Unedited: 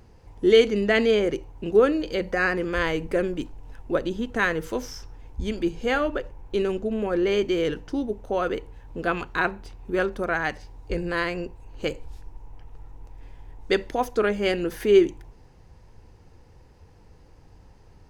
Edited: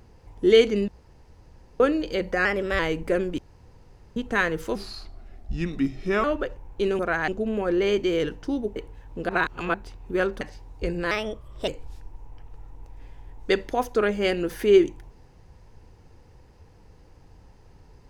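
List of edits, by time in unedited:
0.88–1.80 s: room tone
2.45–2.83 s: speed 111%
3.42–4.20 s: room tone
4.79–5.98 s: speed 80%
8.21–8.55 s: delete
9.08–9.53 s: reverse
10.20–10.49 s: move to 6.73 s
11.19–11.89 s: speed 123%

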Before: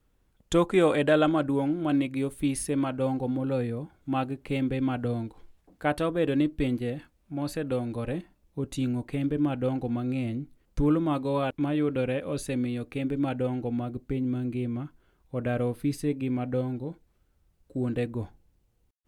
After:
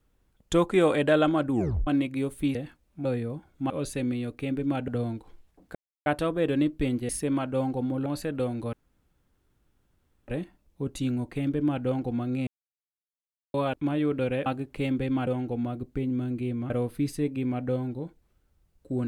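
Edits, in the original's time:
1.51 s: tape stop 0.36 s
2.55–3.52 s: swap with 6.88–7.38 s
4.17–4.98 s: swap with 12.23–13.41 s
5.85 s: insert silence 0.31 s
8.05 s: insert room tone 1.55 s
10.24–11.31 s: mute
14.84–15.55 s: delete

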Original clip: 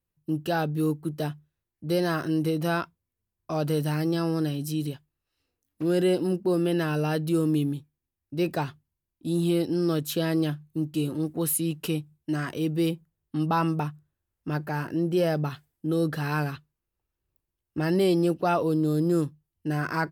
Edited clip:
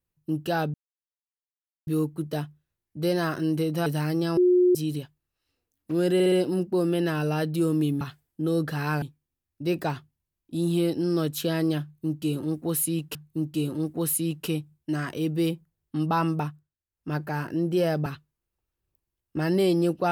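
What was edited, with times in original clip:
0.74 s: insert silence 1.13 s
2.73–3.77 s: delete
4.28–4.66 s: bleep 360 Hz -15.5 dBFS
6.05 s: stutter 0.06 s, 4 plays
10.55–11.87 s: loop, 2 plays
13.86–14.53 s: dip -14.5 dB, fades 0.24 s
15.46–16.47 s: move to 7.74 s

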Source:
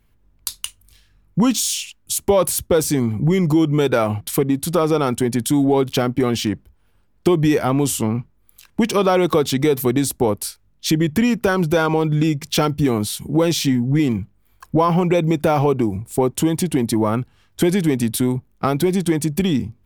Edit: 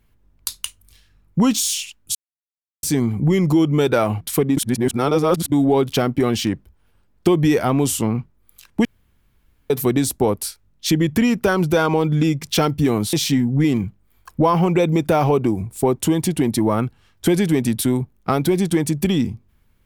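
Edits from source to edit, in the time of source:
2.15–2.83 s: mute
4.57–5.52 s: reverse
8.85–9.70 s: room tone
13.13–13.48 s: delete

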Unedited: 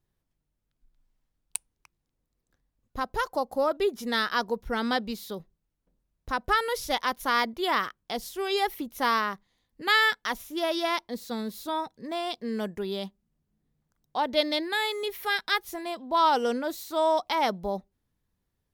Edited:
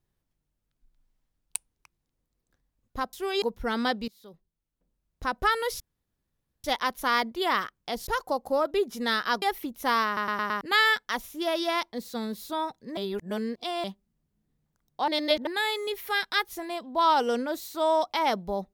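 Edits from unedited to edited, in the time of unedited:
3.13–4.48 s: swap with 8.29–8.58 s
5.14–6.31 s: fade in, from -22.5 dB
6.86 s: insert room tone 0.84 s
9.22 s: stutter in place 0.11 s, 5 plays
12.13–13.00 s: reverse
14.24–14.63 s: reverse

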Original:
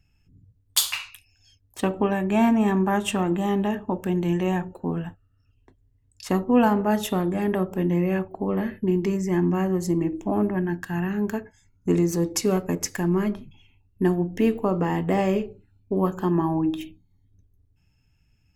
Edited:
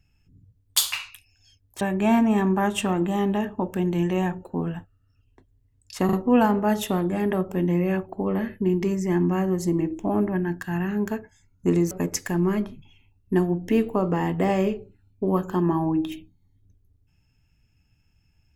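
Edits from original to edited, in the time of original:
1.81–2.11 s: delete
6.35 s: stutter 0.04 s, 3 plays
12.13–12.60 s: delete

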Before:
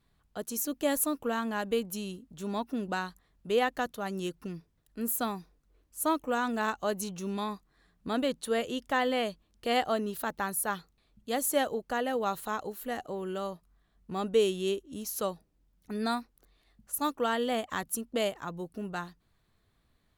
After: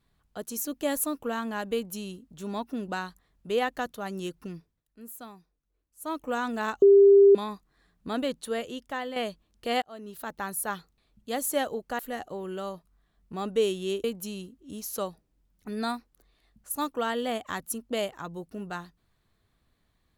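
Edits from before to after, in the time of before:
1.74–2.29 s: copy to 14.82 s
4.56–6.26 s: dip -12.5 dB, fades 0.26 s
6.82–7.35 s: bleep 398 Hz -12 dBFS
8.30–9.16 s: fade out, to -8 dB
9.82–10.77 s: fade in equal-power
11.99–12.77 s: delete

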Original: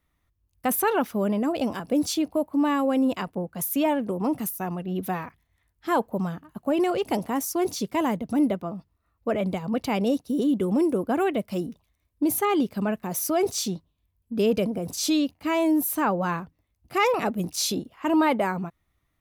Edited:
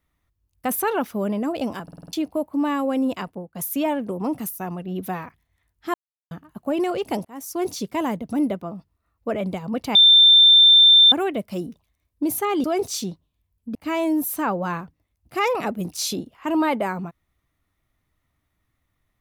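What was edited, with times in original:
1.83 s: stutter in place 0.05 s, 6 plays
3.24–3.55 s: fade out, to -13.5 dB
5.94–6.31 s: mute
7.25–7.62 s: fade in
9.95–11.12 s: bleep 3.57 kHz -8.5 dBFS
12.64–13.28 s: delete
14.39–15.34 s: delete

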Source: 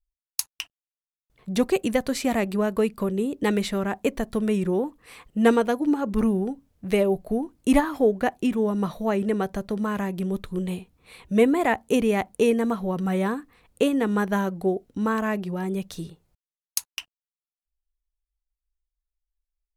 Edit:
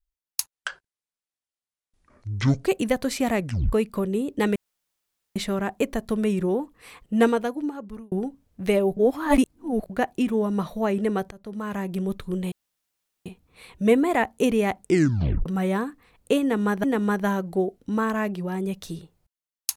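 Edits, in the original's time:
0.52–1.69 s: speed 55%
2.43 s: tape stop 0.34 s
3.60 s: insert room tone 0.80 s
5.39–6.36 s: fade out
7.21–8.14 s: reverse
9.55–10.15 s: fade in, from -21.5 dB
10.76 s: insert room tone 0.74 s
12.31 s: tape stop 0.65 s
13.92–14.34 s: loop, 2 plays

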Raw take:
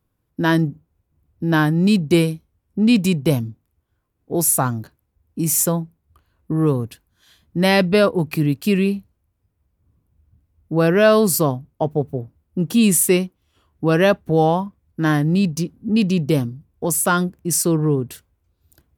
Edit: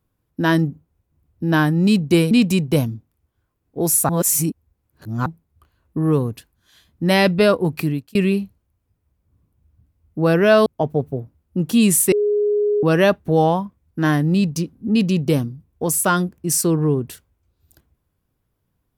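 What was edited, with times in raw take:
2.31–2.85 s: delete
4.63–5.80 s: reverse
8.34–8.69 s: fade out linear
11.20–11.67 s: delete
13.13–13.84 s: bleep 415 Hz -15 dBFS

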